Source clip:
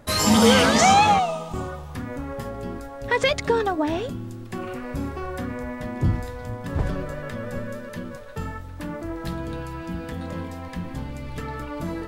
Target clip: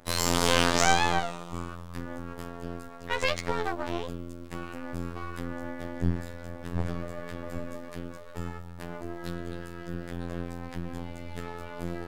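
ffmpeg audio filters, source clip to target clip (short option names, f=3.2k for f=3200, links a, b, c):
-af "afftfilt=real='hypot(re,im)*cos(PI*b)':imag='0':win_size=2048:overlap=0.75,bandreject=f=180.2:t=h:w=4,bandreject=f=360.4:t=h:w=4,bandreject=f=540.6:t=h:w=4,bandreject=f=720.8:t=h:w=4,bandreject=f=901:t=h:w=4,bandreject=f=1.0812k:t=h:w=4,bandreject=f=1.2614k:t=h:w=4,bandreject=f=1.4416k:t=h:w=4,bandreject=f=1.6218k:t=h:w=4,bandreject=f=1.802k:t=h:w=4,bandreject=f=1.9822k:t=h:w=4,bandreject=f=2.1624k:t=h:w=4,bandreject=f=2.3426k:t=h:w=4,bandreject=f=2.5228k:t=h:w=4,bandreject=f=2.703k:t=h:w=4,bandreject=f=2.8832k:t=h:w=4,bandreject=f=3.0634k:t=h:w=4,bandreject=f=3.2436k:t=h:w=4,bandreject=f=3.4238k:t=h:w=4,bandreject=f=3.604k:t=h:w=4,bandreject=f=3.7842k:t=h:w=4,bandreject=f=3.9644k:t=h:w=4,bandreject=f=4.1446k:t=h:w=4,bandreject=f=4.3248k:t=h:w=4,bandreject=f=4.505k:t=h:w=4,bandreject=f=4.6852k:t=h:w=4,bandreject=f=4.8654k:t=h:w=4,bandreject=f=5.0456k:t=h:w=4,bandreject=f=5.2258k:t=h:w=4,bandreject=f=5.406k:t=h:w=4,bandreject=f=5.5862k:t=h:w=4,bandreject=f=5.7664k:t=h:w=4,bandreject=f=5.9466k:t=h:w=4,bandreject=f=6.1268k:t=h:w=4,bandreject=f=6.307k:t=h:w=4,bandreject=f=6.4872k:t=h:w=4,bandreject=f=6.6674k:t=h:w=4,bandreject=f=6.8476k:t=h:w=4,bandreject=f=7.0278k:t=h:w=4,bandreject=f=7.208k:t=h:w=4,aeval=exprs='max(val(0),0)':c=same,volume=-1dB"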